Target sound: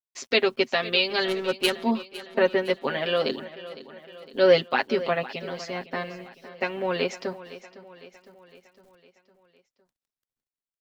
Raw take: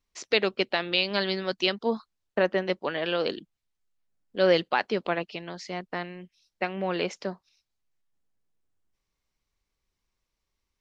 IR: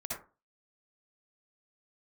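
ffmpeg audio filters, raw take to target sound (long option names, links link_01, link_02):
-filter_complex "[0:a]equalizer=frequency=230:width_type=o:width=0.26:gain=6.5,aecho=1:1:7.5:0.85,asettb=1/sr,asplit=3[link_01][link_02][link_03];[link_01]atrim=end=1.284[link_04];[link_02]atrim=start=1.28:end=1.76,asetpts=PTS-STARTPTS,afade=type=in:duration=0.004:curve=qsin,afade=type=out:start_time=0.476:duration=0.004:curve=qsin,adynamicsmooth=sensitivity=2:basefreq=520[link_05];[link_03]atrim=start=1.756[link_06];[link_04][link_05]acrossfade=duration=0.004:curve1=hsin:curve2=qsin[link_07];[link_07][link_06]acrossfade=duration=0.004:curve1=qsin:curve2=hsin,acrusher=bits=10:mix=0:aa=0.000001,aecho=1:1:508|1016|1524|2032|2540:0.158|0.0872|0.0479|0.0264|0.0145"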